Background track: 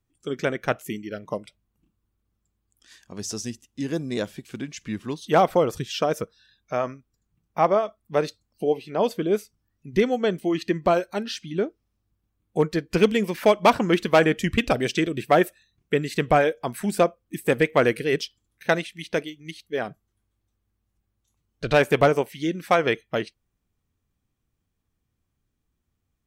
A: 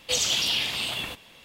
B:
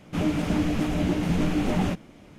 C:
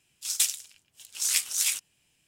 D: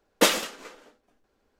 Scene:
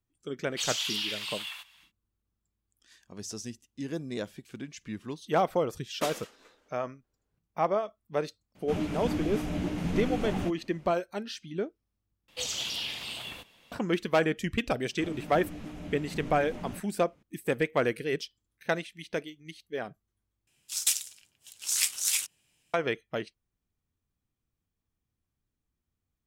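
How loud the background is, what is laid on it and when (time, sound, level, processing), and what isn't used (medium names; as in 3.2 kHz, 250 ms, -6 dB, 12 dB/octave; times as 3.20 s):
background track -7.5 dB
0.48 s: add A -7 dB, fades 0.10 s + high-pass 1 kHz 24 dB/octave
5.80 s: add D -15 dB
8.55 s: add B -7 dB
12.28 s: replace with A -9 dB
14.85 s: add B -16 dB
20.47 s: replace with C -1.5 dB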